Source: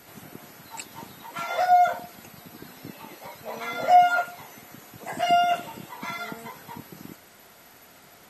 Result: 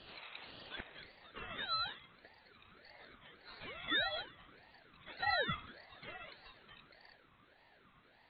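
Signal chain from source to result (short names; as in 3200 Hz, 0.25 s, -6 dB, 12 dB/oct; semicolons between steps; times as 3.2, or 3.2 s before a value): inverted band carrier 3400 Hz; band-pass sweep 1600 Hz -> 490 Hz, 0.72–1.29; ring modulator with a swept carrier 990 Hz, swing 40%, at 1.7 Hz; gain +5 dB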